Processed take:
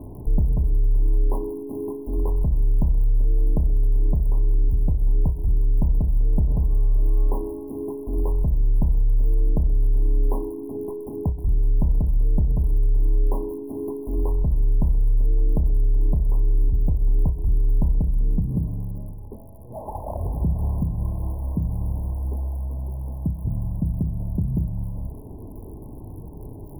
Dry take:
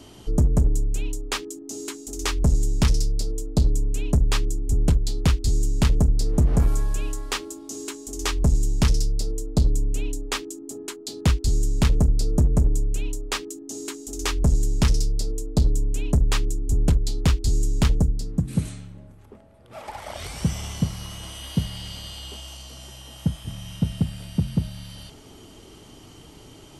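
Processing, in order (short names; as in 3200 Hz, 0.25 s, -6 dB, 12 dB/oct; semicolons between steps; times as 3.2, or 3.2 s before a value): median filter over 25 samples; low shelf 130 Hz +10.5 dB; compressor, threshold -20 dBFS, peak gain reduction 14 dB; limiter -20 dBFS, peak gain reduction 8.5 dB; crackle 69/s -36 dBFS; brick-wall FIR band-stop 1100–9500 Hz; thinning echo 0.132 s, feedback 65%, level -18 dB; on a send at -11 dB: reverb, pre-delay 31 ms; on the sum: ending taper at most 140 dB/s; gain +5 dB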